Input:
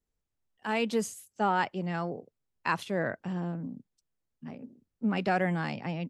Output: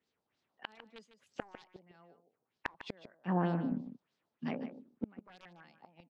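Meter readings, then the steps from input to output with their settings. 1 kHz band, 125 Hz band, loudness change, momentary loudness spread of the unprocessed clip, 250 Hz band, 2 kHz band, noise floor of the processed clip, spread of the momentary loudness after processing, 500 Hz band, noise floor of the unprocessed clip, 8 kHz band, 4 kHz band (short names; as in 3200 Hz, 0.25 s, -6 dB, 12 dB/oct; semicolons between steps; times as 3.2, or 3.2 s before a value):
-12.5 dB, -6.0 dB, -8.0 dB, 17 LU, -6.0 dB, -13.5 dB, under -85 dBFS, 24 LU, -11.5 dB, -84 dBFS, under -25 dB, -11.5 dB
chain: HPF 190 Hz 12 dB/oct; wrapped overs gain 19.5 dB; random-step tremolo, depth 55%; flipped gate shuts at -33 dBFS, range -36 dB; LFO low-pass sine 3.2 Hz 780–4800 Hz; on a send: echo 0.151 s -11.5 dB; on the sum: gain +10 dB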